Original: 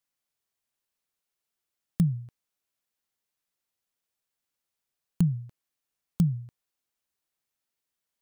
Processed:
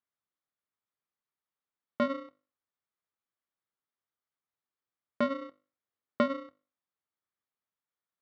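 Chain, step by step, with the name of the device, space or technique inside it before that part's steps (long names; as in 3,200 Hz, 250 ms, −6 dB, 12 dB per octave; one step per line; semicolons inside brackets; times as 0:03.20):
mains-hum notches 50/100/150/200/250/300 Hz
0:05.41–0:06.22: low-shelf EQ 190 Hz +6 dB
ring modulator pedal into a guitar cabinet (ring modulator with a square carrier 410 Hz; loudspeaker in its box 92–3,400 Hz, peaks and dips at 97 Hz +5 dB, 1,200 Hz +5 dB, 2,700 Hz −9 dB)
level −5 dB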